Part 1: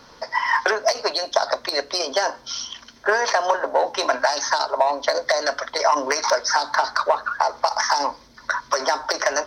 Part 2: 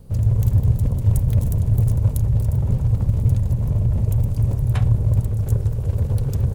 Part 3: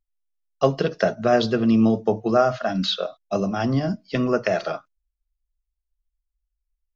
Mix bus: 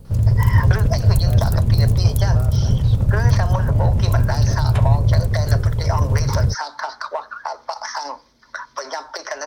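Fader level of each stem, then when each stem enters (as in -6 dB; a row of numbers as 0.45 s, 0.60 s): -7.0 dB, +2.5 dB, -18.0 dB; 0.05 s, 0.00 s, 0.00 s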